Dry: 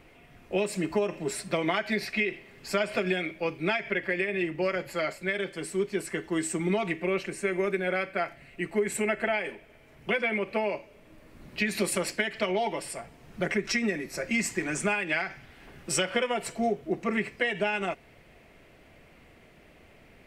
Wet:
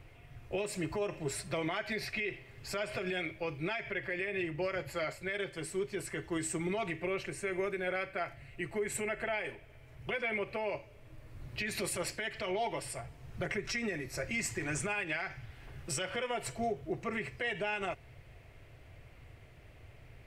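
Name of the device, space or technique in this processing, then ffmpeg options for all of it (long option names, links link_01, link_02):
car stereo with a boomy subwoofer: -af "lowshelf=frequency=150:width_type=q:width=3:gain=8,alimiter=limit=-21.5dB:level=0:latency=1:release=41,volume=-4dB"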